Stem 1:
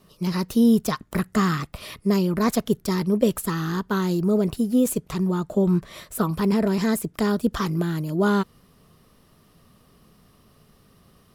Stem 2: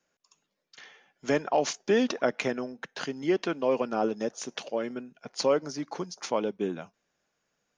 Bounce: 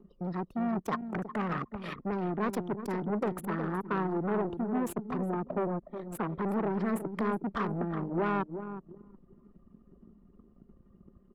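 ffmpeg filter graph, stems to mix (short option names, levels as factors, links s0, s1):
-filter_complex "[0:a]acompressor=mode=upward:threshold=0.0562:ratio=2.5,asoftclip=type=hard:threshold=0.0562,volume=1,asplit=3[s0][s1][s2];[s1]volume=0.473[s3];[1:a]lowpass=2000,acompressor=threshold=0.0398:ratio=6,crystalizer=i=9:c=0,volume=0.237[s4];[s2]apad=whole_len=342781[s5];[s4][s5]sidechaincompress=threshold=0.0126:ratio=3:attack=16:release=559[s6];[s3]aecho=0:1:366|732|1098|1464|1830|2196:1|0.41|0.168|0.0689|0.0283|0.0116[s7];[s0][s6][s7]amix=inputs=3:normalize=0,anlmdn=100,acrossover=split=230 2600:gain=0.224 1 0.2[s8][s9][s10];[s8][s9][s10]amix=inputs=3:normalize=0"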